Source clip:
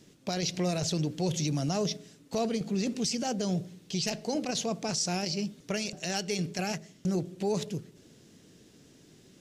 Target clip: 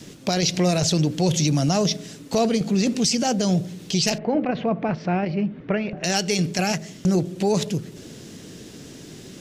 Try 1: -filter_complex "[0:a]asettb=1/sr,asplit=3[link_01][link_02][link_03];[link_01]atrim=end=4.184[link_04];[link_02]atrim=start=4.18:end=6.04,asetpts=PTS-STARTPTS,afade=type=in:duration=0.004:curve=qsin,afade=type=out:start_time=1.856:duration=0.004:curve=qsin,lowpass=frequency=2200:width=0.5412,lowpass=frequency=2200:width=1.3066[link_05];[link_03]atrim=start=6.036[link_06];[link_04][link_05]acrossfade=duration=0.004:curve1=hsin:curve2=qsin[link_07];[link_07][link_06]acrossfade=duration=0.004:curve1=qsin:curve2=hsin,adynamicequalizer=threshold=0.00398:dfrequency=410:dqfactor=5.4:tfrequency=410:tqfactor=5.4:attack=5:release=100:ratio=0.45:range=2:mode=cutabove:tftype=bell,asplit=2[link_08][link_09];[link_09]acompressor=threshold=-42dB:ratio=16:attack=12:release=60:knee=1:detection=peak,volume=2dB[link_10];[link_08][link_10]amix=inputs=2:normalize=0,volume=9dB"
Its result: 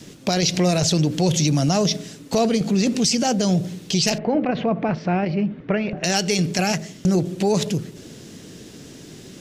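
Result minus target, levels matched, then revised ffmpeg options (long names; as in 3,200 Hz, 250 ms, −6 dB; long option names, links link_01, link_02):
downward compressor: peak gain reduction −11 dB
-filter_complex "[0:a]asettb=1/sr,asplit=3[link_01][link_02][link_03];[link_01]atrim=end=4.184[link_04];[link_02]atrim=start=4.18:end=6.04,asetpts=PTS-STARTPTS,afade=type=in:duration=0.004:curve=qsin,afade=type=out:start_time=1.856:duration=0.004:curve=qsin,lowpass=frequency=2200:width=0.5412,lowpass=frequency=2200:width=1.3066[link_05];[link_03]atrim=start=6.036[link_06];[link_04][link_05]acrossfade=duration=0.004:curve1=hsin:curve2=qsin[link_07];[link_07][link_06]acrossfade=duration=0.004:curve1=qsin:curve2=hsin,adynamicequalizer=threshold=0.00398:dfrequency=410:dqfactor=5.4:tfrequency=410:tqfactor=5.4:attack=5:release=100:ratio=0.45:range=2:mode=cutabove:tftype=bell,asplit=2[link_08][link_09];[link_09]acompressor=threshold=-53.5dB:ratio=16:attack=12:release=60:knee=1:detection=peak,volume=2dB[link_10];[link_08][link_10]amix=inputs=2:normalize=0,volume=9dB"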